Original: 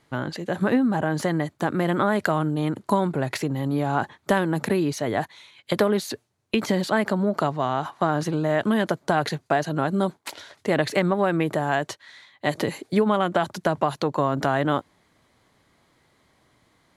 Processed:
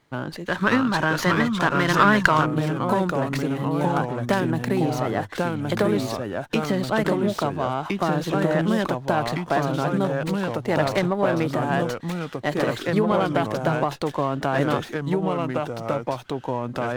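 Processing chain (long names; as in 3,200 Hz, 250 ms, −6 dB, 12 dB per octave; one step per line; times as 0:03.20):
delay with pitch and tempo change per echo 563 ms, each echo −2 semitones, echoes 2
gain on a spectral selection 0:00.45–0:02.46, 890–7,100 Hz +10 dB
windowed peak hold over 3 samples
level −1.5 dB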